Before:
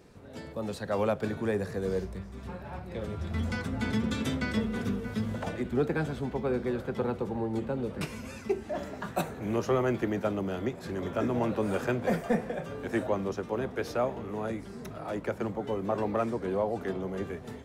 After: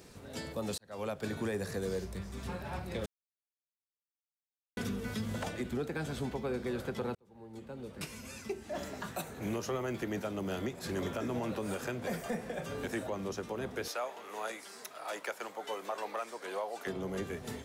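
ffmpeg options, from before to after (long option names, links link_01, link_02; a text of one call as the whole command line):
ffmpeg -i in.wav -filter_complex "[0:a]asettb=1/sr,asplit=3[link_01][link_02][link_03];[link_01]atrim=end=13.884[link_04];[link_02]atrim=start=13.88:end=16.87,asetpts=PTS-STARTPTS,afade=type=in:duration=0.004:curve=qsin,afade=type=out:start_time=2.986:duration=0.004:curve=qsin,highpass=710[link_05];[link_03]atrim=start=16.866[link_06];[link_04][link_05]acrossfade=duration=0.004:curve1=hsin:curve2=qsin[link_07];[link_07][link_06]acrossfade=duration=0.004:curve1=qsin:curve2=hsin,asplit=5[link_08][link_09][link_10][link_11][link_12];[link_08]atrim=end=0.78,asetpts=PTS-STARTPTS,afade=type=out:start_time=0.776:duration=0.004:curve=hsin[link_13];[link_09]atrim=start=0.78:end=3.06,asetpts=PTS-STARTPTS,afade=type=in:duration=0.77,afade=type=out:start_time=2.276:duration=0.004:curve=hsin[link_14];[link_10]atrim=start=3.06:end=4.77,asetpts=PTS-STARTPTS,volume=0[link_15];[link_11]atrim=start=4.77:end=7.15,asetpts=PTS-STARTPTS,afade=type=in:duration=0.004:curve=hsin,afade=type=out:start_time=2.376:duration=0.004:curve=hsin[link_16];[link_12]atrim=start=7.15,asetpts=PTS-STARTPTS,afade=type=in:duration=2.6[link_17];[link_13][link_14][link_15][link_16][link_17]concat=n=5:v=0:a=1,highshelf=frequency=3000:gain=11.5,alimiter=level_in=2.5dB:limit=-24dB:level=0:latency=1:release=320,volume=-2.5dB" out.wav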